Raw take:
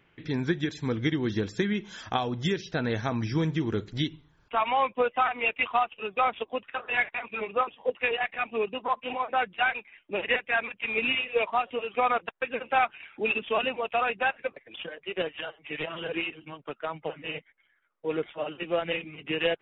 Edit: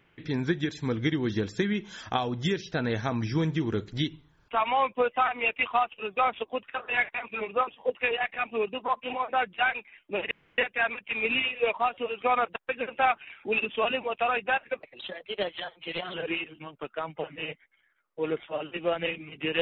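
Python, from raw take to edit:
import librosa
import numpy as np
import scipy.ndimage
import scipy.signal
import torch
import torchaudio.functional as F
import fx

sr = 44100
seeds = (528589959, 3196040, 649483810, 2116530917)

y = fx.edit(x, sr, fx.insert_room_tone(at_s=10.31, length_s=0.27),
    fx.speed_span(start_s=14.55, length_s=1.45, speed=1.1), tone=tone)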